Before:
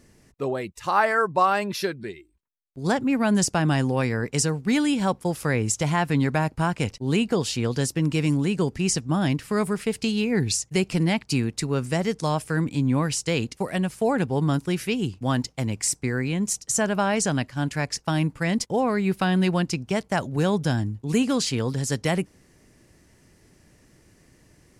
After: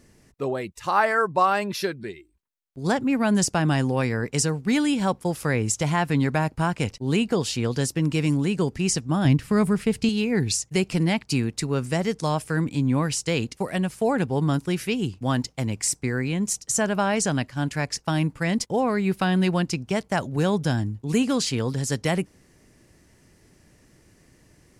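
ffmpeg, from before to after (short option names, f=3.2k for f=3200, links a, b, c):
-filter_complex "[0:a]asettb=1/sr,asplit=3[a][b][c];[a]atrim=end=9.254[d];[b]atrim=start=9.25:end=10.09,asetpts=PTS-STARTPTS,afade=t=in:d=0.004:c=qsin,afade=t=out:st=0.836:d=0.004:c=qsin,bass=f=250:g=8,treble=f=4k:g=-2[e];[c]atrim=start=10.086[f];[d][e]acrossfade=d=0.004:c1=hsin:c2=qsin[g];[g][f]acrossfade=d=0.004:c1=qsin:c2=hsin"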